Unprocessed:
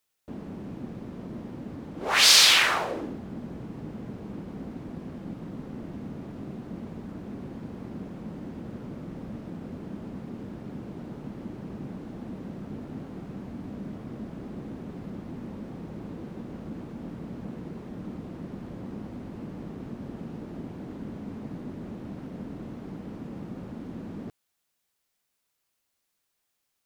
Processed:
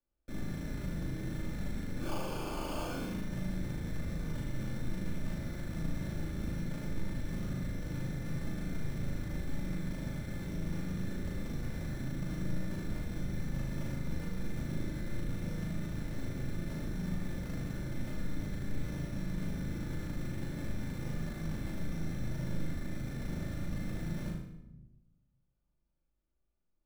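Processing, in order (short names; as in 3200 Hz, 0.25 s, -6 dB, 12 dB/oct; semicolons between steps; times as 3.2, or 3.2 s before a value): running mean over 22 samples; tilt -4 dB/oct; soft clip -31.5 dBFS, distortion -9 dB; frequency shift -56 Hz; sample-and-hold 23×; flutter echo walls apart 6.5 m, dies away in 0.61 s; shoebox room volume 3600 m³, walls furnished, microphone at 2.5 m; gain -8 dB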